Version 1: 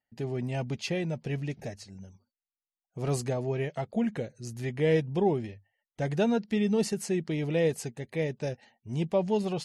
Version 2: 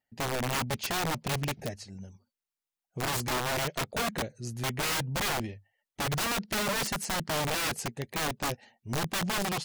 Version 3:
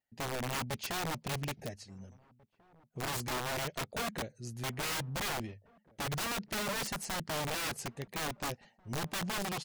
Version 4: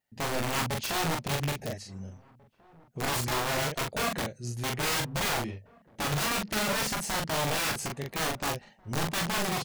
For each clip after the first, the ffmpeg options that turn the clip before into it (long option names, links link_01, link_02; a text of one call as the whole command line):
ffmpeg -i in.wav -af "aeval=exprs='(mod(22.4*val(0)+1,2)-1)/22.4':channel_layout=same,volume=2dB" out.wav
ffmpeg -i in.wav -filter_complex "[0:a]asplit=2[link_01][link_02];[link_02]adelay=1691,volume=-25dB,highshelf=frequency=4000:gain=-38[link_03];[link_01][link_03]amix=inputs=2:normalize=0,volume=-5.5dB" out.wav
ffmpeg -i in.wav -af "aecho=1:1:19|42:0.355|0.708,volume=4.5dB" out.wav